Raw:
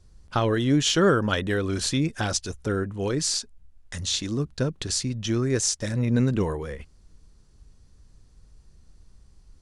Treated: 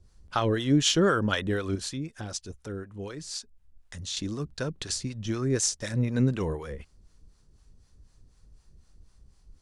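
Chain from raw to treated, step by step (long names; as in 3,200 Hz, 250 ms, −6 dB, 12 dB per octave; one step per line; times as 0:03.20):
0:01.75–0:04.17: downward compressor 1.5 to 1, threshold −45 dBFS, peak gain reduction 9 dB
two-band tremolo in antiphase 4 Hz, depth 70%, crossover 580 Hz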